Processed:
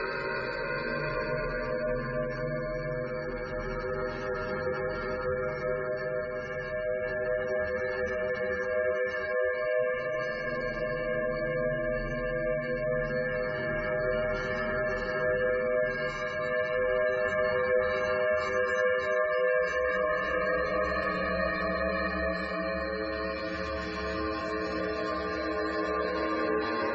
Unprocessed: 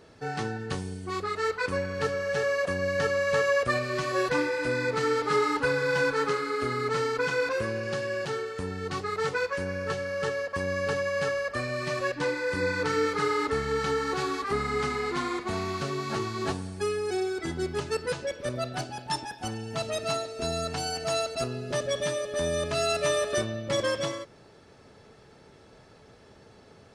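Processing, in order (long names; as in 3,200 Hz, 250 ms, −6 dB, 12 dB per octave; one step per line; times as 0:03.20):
ring modulation 56 Hz
extreme stretch with random phases 10×, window 0.50 s, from 0:01.58
gate on every frequency bin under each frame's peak −25 dB strong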